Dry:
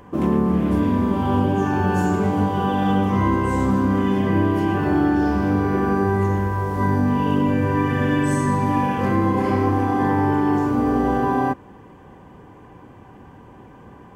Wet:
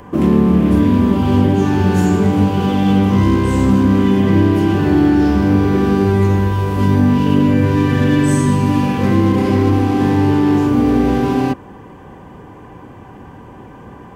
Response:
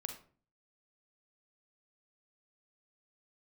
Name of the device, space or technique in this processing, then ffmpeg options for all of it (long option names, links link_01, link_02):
one-band saturation: -filter_complex "[0:a]acrossover=split=460|2300[link_01][link_02][link_03];[link_02]asoftclip=type=tanh:threshold=-33.5dB[link_04];[link_01][link_04][link_03]amix=inputs=3:normalize=0,volume=7.5dB"